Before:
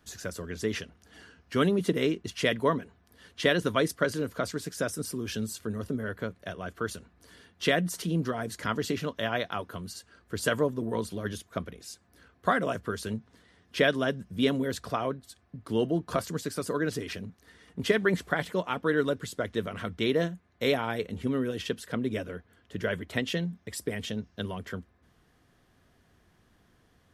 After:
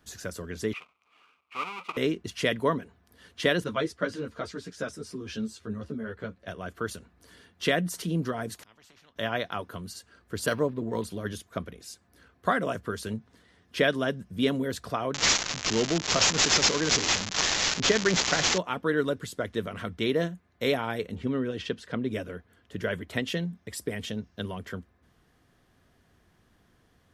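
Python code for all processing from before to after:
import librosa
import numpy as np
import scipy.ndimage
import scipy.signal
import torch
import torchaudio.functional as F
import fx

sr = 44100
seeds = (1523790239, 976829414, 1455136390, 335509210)

y = fx.chain(x, sr, fx.halfwave_hold(),
    fx.double_bandpass(hz=1700.0, octaves=1.0), at=(0.73, 1.97))
y = fx.chain(y, sr, fx.lowpass(hz=5900.0, slope=12),
    fx.ensemble(), at=(3.64, 6.48))
y = fx.chain(y, sr, fx.lowpass(hz=1400.0, slope=6),
    fx.gate_flip(shuts_db=-33.0, range_db=-31),
    fx.spectral_comp(ratio=4.0), at=(8.54, 9.16))
y = fx.chain(y, sr, fx.peak_eq(hz=4400.0, db=6.5, octaves=0.63),
    fx.resample_linear(factor=6), at=(10.46, 11.04))
y = fx.chain(y, sr, fx.crossing_spikes(level_db=-16.0),
    fx.resample_bad(factor=3, down='none', up='filtered'), at=(15.14, 18.58))
y = fx.chain(y, sr, fx.lowpass(hz=5400.0, slope=12),
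    fx.quant_float(bits=8), at=(21.15, 22.09))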